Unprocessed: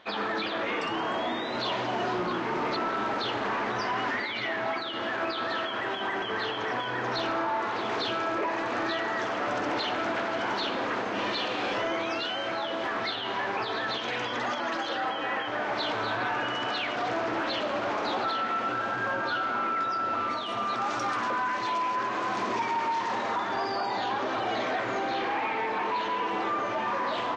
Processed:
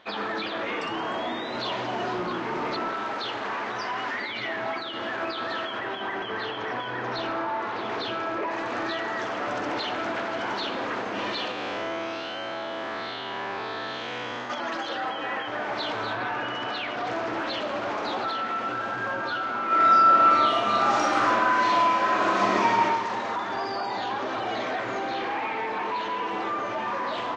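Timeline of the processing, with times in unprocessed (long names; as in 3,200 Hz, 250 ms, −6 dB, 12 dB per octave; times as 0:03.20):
0:02.93–0:04.21: low-shelf EQ 370 Hz −7 dB
0:05.79–0:08.51: high-frequency loss of the air 75 metres
0:11.51–0:14.50: spectrum smeared in time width 187 ms
0:16.13–0:17.07: high-frequency loss of the air 59 metres
0:19.66–0:22.85: thrown reverb, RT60 0.85 s, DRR −6.5 dB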